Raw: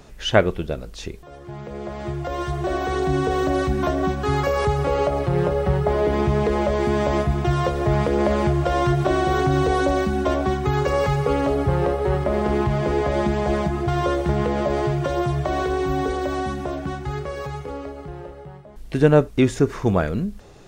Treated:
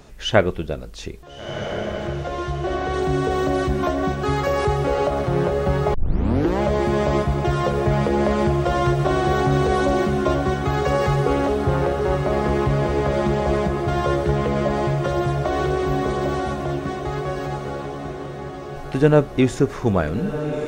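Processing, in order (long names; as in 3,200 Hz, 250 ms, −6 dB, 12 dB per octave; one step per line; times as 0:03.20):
0:02.07–0:02.94: high-frequency loss of the air 63 metres
feedback delay with all-pass diffusion 1,410 ms, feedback 50%, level −7.5 dB
0:05.94: tape start 0.67 s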